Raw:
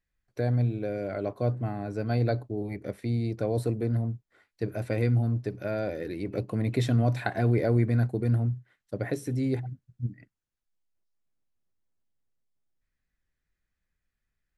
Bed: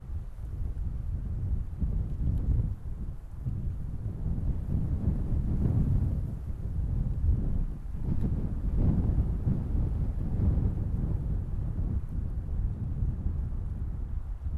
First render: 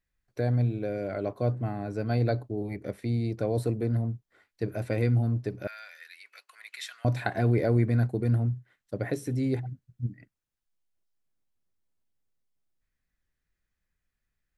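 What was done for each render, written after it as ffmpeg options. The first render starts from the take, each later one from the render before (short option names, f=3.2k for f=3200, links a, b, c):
-filter_complex "[0:a]asettb=1/sr,asplit=3[a][b][c];[a]atrim=end=5.674[d];[b]atrim=start=5.67:end=7.05,asetpts=PTS-STARTPTS,afade=t=in:d=0.004:c=qsin,afade=t=out:st=1.376:d=0.004:c=qsin,highpass=f=1.4k:w=0.5412,highpass=f=1.4k:w=1.3066[e];[c]atrim=start=7.046[f];[d][e]acrossfade=d=0.004:c1=hsin:c2=qsin[g];[g][f]acrossfade=d=0.004:c1=qsin:c2=hsin"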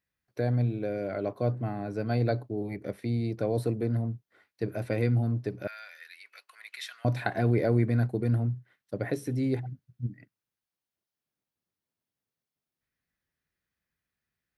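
-af "highpass=96,equalizer=f=7.4k:w=3.2:g=-6.5"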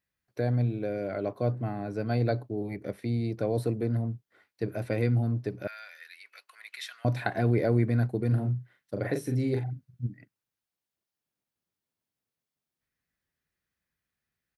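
-filter_complex "[0:a]asplit=3[a][b][c];[a]afade=t=out:st=8.3:d=0.02[d];[b]asplit=2[e][f];[f]adelay=40,volume=-4.5dB[g];[e][g]amix=inputs=2:normalize=0,afade=t=in:st=8.3:d=0.02,afade=t=out:st=10.05:d=0.02[h];[c]afade=t=in:st=10.05:d=0.02[i];[d][h][i]amix=inputs=3:normalize=0"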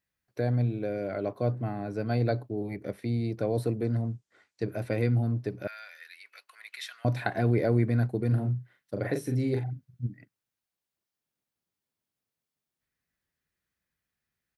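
-filter_complex "[0:a]asettb=1/sr,asplit=3[a][b][c];[a]atrim=end=3.844[d];[b]atrim=start=3.84:end=4.65,asetpts=PTS-STARTPTS,afade=t=in:d=0.004:c=qsin,afade=t=out:st=0.806:d=0.004:c=qsin,lowpass=f=7.3k:t=q:w=2.4[e];[c]atrim=start=4.646[f];[d][e]acrossfade=d=0.004:c1=hsin:c2=qsin[g];[g][f]acrossfade=d=0.004:c1=qsin:c2=hsin"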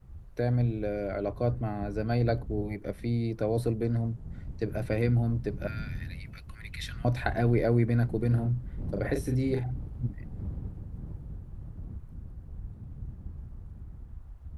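-filter_complex "[1:a]volume=-10dB[a];[0:a][a]amix=inputs=2:normalize=0"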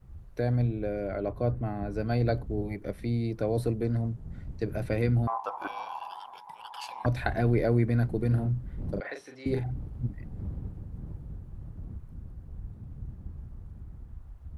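-filter_complex "[0:a]asettb=1/sr,asplit=3[a][b][c];[a]atrim=end=0.674[d];[b]atrim=start=0.67:end=1.92,asetpts=PTS-STARTPTS,afade=t=in:d=0.004:c=qsin,afade=t=out:st=1.246:d=0.004:c=qsin,equalizer=f=5.9k:t=o:w=2.1:g=-5.5[e];[c]atrim=start=1.916[f];[d][e]acrossfade=d=0.004:c1=hsin:c2=qsin[g];[g][f]acrossfade=d=0.004:c1=qsin:c2=hsin,asettb=1/sr,asplit=3[h][i][j];[h]atrim=end=5.274[k];[i]atrim=start=5.27:end=7.06,asetpts=PTS-STARTPTS,afade=t=in:d=0.004:c=qsin,afade=t=out:st=1.786:d=0.004:c=qsin,aeval=exprs='val(0)*sin(2*PI*910*n/s)':c=same[l];[j]atrim=start=7.056[m];[k][l]acrossfade=d=0.004:c1=hsin:c2=qsin[n];[n][m]acrossfade=d=0.004:c1=qsin:c2=hsin,asettb=1/sr,asplit=3[o][p][q];[o]atrim=end=9.004[r];[p]atrim=start=9:end=9.46,asetpts=PTS-STARTPTS,afade=t=in:d=0.004:c=qsin,afade=t=out:st=0.456:d=0.004:c=qsin,highpass=790,lowpass=4.4k[s];[q]atrim=start=9.456[t];[r][s]acrossfade=d=0.004:c1=hsin:c2=qsin[u];[u][t]acrossfade=d=0.004:c1=qsin:c2=hsin"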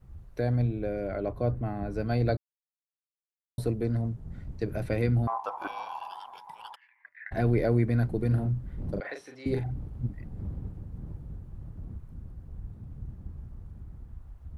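-filter_complex "[0:a]asplit=3[a][b][c];[a]afade=t=out:st=6.74:d=0.02[d];[b]asuperpass=centerf=1900:order=4:qfactor=5.3,afade=t=in:st=6.74:d=0.02,afade=t=out:st=7.31:d=0.02[e];[c]afade=t=in:st=7.31:d=0.02[f];[d][e][f]amix=inputs=3:normalize=0,asplit=3[g][h][i];[g]atrim=end=2.37,asetpts=PTS-STARTPTS,afade=t=out:st=2.366:d=0.004:c=hsin[j];[h]atrim=start=2.37:end=3.58,asetpts=PTS-STARTPTS,volume=0[k];[i]atrim=start=3.58,asetpts=PTS-STARTPTS,afade=t=in:d=0.004:c=hsin[l];[j][k][l]concat=n=3:v=0:a=1"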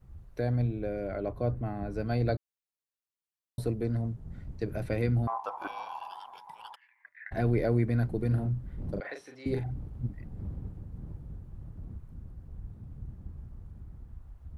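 -af "volume=-2dB"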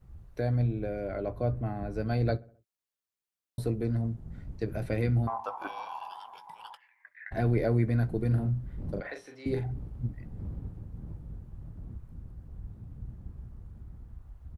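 -filter_complex "[0:a]asplit=2[a][b];[b]adelay=18,volume=-13dB[c];[a][c]amix=inputs=2:normalize=0,asplit=2[d][e];[e]adelay=65,lowpass=f=2k:p=1,volume=-22.5dB,asplit=2[f][g];[g]adelay=65,lowpass=f=2k:p=1,volume=0.54,asplit=2[h][i];[i]adelay=65,lowpass=f=2k:p=1,volume=0.54,asplit=2[j][k];[k]adelay=65,lowpass=f=2k:p=1,volume=0.54[l];[d][f][h][j][l]amix=inputs=5:normalize=0"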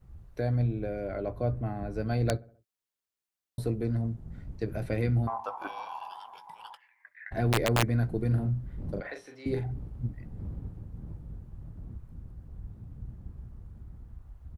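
-af "aeval=exprs='(mod(6.68*val(0)+1,2)-1)/6.68':c=same"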